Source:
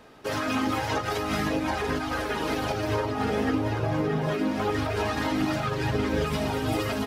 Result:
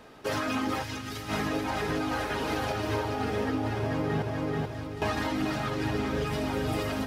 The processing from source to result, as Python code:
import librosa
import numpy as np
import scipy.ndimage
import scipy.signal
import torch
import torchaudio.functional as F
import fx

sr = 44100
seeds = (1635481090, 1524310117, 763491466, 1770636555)

y = fx.tone_stack(x, sr, knobs='6-0-2', at=(4.22, 5.02))
y = fx.echo_feedback(y, sr, ms=434, feedback_pct=39, wet_db=-5.5)
y = fx.rider(y, sr, range_db=5, speed_s=0.5)
y = fx.peak_eq(y, sr, hz=680.0, db=-14.0, octaves=2.3, at=(0.82, 1.28), fade=0.02)
y = F.gain(torch.from_numpy(y), -3.5).numpy()